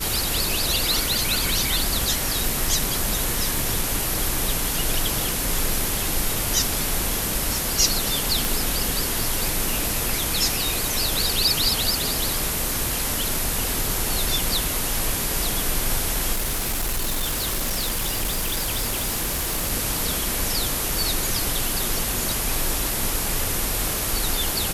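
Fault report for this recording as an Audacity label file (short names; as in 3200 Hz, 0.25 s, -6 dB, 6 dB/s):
8.450000	8.450000	pop
16.330000	19.720000	clipped -20.5 dBFS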